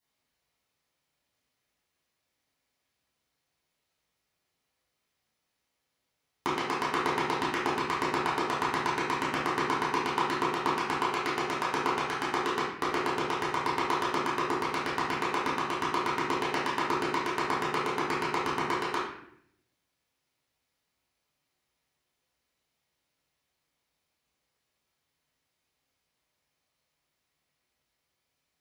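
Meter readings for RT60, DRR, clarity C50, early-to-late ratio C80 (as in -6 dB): 0.70 s, -10.0 dB, 1.0 dB, 5.0 dB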